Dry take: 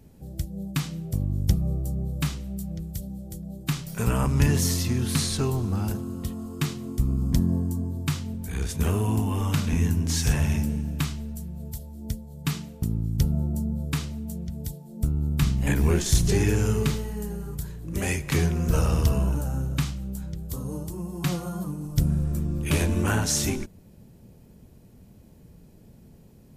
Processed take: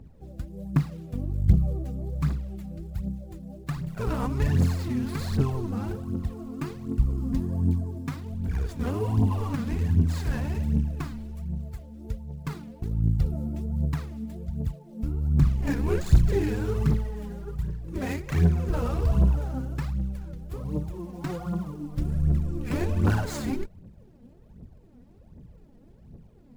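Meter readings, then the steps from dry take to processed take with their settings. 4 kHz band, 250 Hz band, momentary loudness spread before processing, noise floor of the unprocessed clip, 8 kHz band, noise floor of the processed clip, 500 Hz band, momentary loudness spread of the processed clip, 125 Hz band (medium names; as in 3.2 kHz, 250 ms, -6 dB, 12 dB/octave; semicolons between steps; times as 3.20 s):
-12.0 dB, -1.5 dB, 12 LU, -52 dBFS, -16.0 dB, -52 dBFS, -1.5 dB, 13 LU, -1.0 dB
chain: median filter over 15 samples; in parallel at -2 dB: peak limiter -19.5 dBFS, peak gain reduction 9 dB; on the sum: phaser 1.3 Hz, delay 4.3 ms, feedback 65%; trim -7.5 dB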